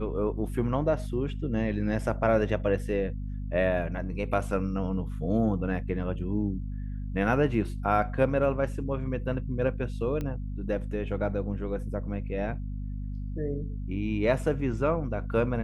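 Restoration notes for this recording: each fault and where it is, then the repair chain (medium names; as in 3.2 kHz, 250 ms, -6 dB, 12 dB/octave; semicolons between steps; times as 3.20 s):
hum 50 Hz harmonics 5 -34 dBFS
10.21 s: pop -21 dBFS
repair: de-click; de-hum 50 Hz, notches 5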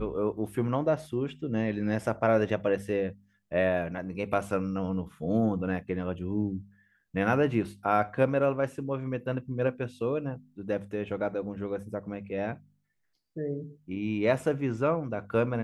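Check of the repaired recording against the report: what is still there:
nothing left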